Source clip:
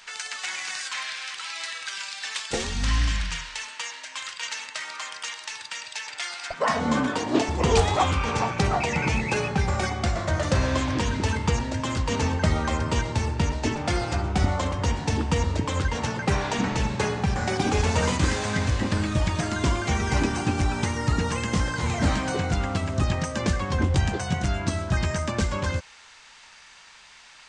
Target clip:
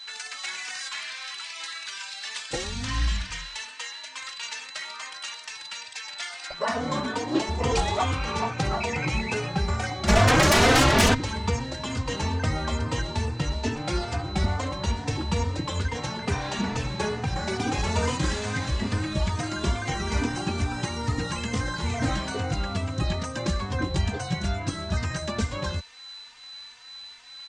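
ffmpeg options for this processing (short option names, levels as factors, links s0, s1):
-filter_complex "[0:a]asplit=3[s0][s1][s2];[s0]afade=t=out:st=10.07:d=0.02[s3];[s1]aeval=exprs='0.266*sin(PI/2*5.01*val(0)/0.266)':c=same,afade=t=in:st=10.07:d=0.02,afade=t=out:st=11.13:d=0.02[s4];[s2]afade=t=in:st=11.13:d=0.02[s5];[s3][s4][s5]amix=inputs=3:normalize=0,aeval=exprs='val(0)+0.0112*sin(2*PI*4000*n/s)':c=same,asplit=2[s6][s7];[s7]adelay=3.2,afreqshift=2.3[s8];[s6][s8]amix=inputs=2:normalize=1"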